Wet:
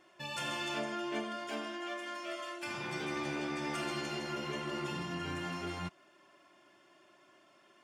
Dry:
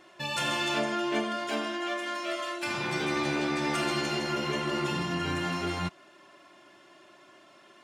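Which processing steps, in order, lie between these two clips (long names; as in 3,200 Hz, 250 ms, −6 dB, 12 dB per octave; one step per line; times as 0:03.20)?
notch filter 4,000 Hz, Q 13
level −8 dB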